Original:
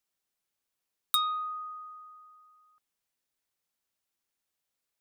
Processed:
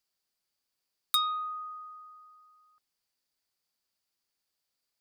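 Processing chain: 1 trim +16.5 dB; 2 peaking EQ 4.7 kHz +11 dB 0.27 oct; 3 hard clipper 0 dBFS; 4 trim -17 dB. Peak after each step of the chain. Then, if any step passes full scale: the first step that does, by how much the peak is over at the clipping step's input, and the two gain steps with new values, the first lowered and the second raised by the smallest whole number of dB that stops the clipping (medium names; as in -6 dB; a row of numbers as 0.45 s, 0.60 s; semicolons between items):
+4.5 dBFS, +5.5 dBFS, 0.0 dBFS, -17.0 dBFS; step 1, 5.5 dB; step 1 +10.5 dB, step 4 -11 dB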